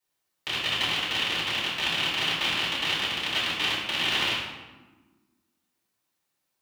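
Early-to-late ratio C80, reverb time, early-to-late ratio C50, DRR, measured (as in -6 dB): 3.0 dB, 1.3 s, 0.5 dB, -9.5 dB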